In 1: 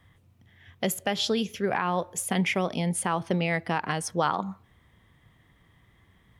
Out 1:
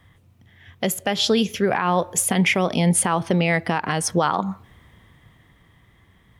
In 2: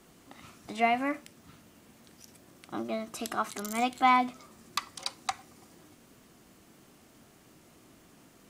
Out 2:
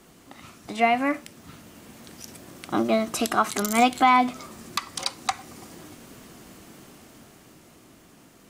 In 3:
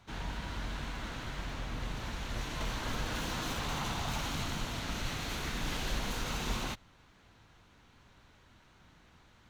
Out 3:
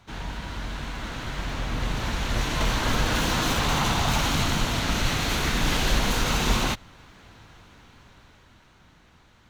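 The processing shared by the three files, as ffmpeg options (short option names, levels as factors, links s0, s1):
-af "dynaudnorm=f=100:g=31:m=2.24,alimiter=limit=0.211:level=0:latency=1:release=215,volume=1.78"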